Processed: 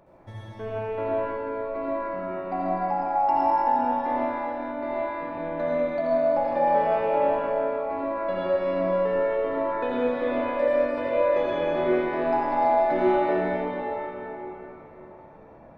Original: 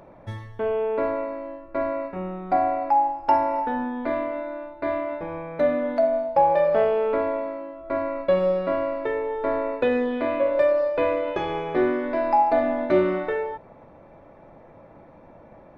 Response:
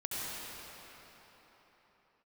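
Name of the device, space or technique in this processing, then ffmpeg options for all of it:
cathedral: -filter_complex "[1:a]atrim=start_sample=2205[a];[0:a][a]afir=irnorm=-1:irlink=0,volume=-5.5dB"

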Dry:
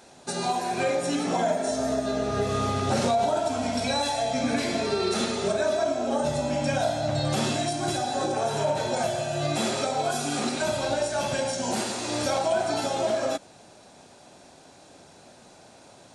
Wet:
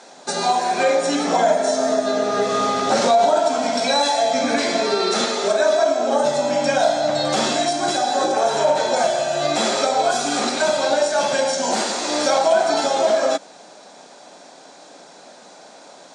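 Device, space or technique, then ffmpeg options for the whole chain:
television speaker: -filter_complex "[0:a]highpass=f=220:w=0.5412,highpass=f=220:w=1.3066,equalizer=f=240:t=q:w=4:g=-5,equalizer=f=360:t=q:w=4:g=-6,equalizer=f=2.7k:t=q:w=4:g=-5,lowpass=f=7.9k:w=0.5412,lowpass=f=7.9k:w=1.3066,asettb=1/sr,asplit=3[a][b][c];[a]atrim=end=5.244[d];[b]atrim=start=5.24:end=6,asetpts=PTS-STARTPTS,afade=t=in:d=0.004:c=qsin,afade=t=out:st=0.756:d=0.004:c=qsin,equalizer=f=130:t=o:w=0.8:g=-13[e];[c]atrim=start=5.996[f];[d][e]acrossfade=d=0.004:c1=hsin:c2=qsin[g];[g][f]acrossfade=d=0.004:c1=qsin:c2=hsin,volume=9dB"

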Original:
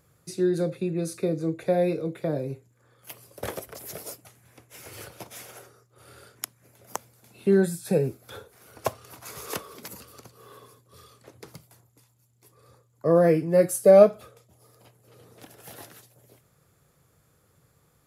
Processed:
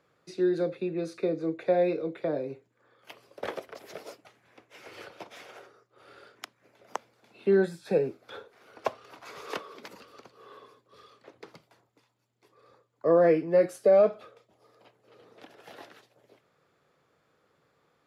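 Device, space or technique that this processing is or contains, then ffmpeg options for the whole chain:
DJ mixer with the lows and highs turned down: -filter_complex "[0:a]acrossover=split=210 4700:gain=0.2 1 0.0708[a][b][c];[a][b][c]amix=inputs=3:normalize=0,lowshelf=f=150:g=-5.5,alimiter=limit=-12.5dB:level=0:latency=1"

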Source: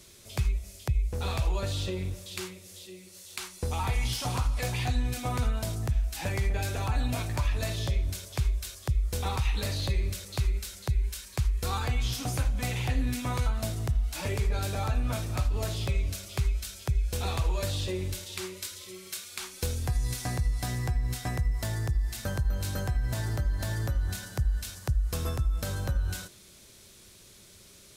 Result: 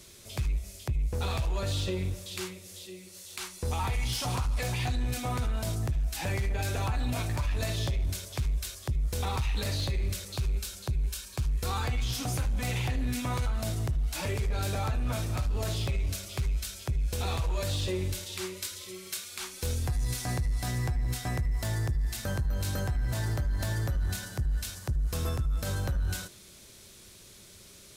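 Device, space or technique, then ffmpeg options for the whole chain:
limiter into clipper: -filter_complex "[0:a]asettb=1/sr,asplit=3[a][b][c];[a]atrim=end=10.334[d];[b]atrim=start=10.33:end=11.51,asetpts=PTS-STARTPTS,afade=t=in:d=0.004:c=qsin,afade=t=out:st=1.176:d=0.004:c=qsin,bandreject=f=2k:w=6.4[e];[c]atrim=start=11.506[f];[d][e]acrossfade=d=0.004:c1=hsin:c2=qsin[g];[g][f]acrossfade=d=0.004:c1=qsin:c2=hsin,alimiter=limit=-23dB:level=0:latency=1:release=40,asoftclip=type=hard:threshold=-25.5dB,volume=1.5dB"

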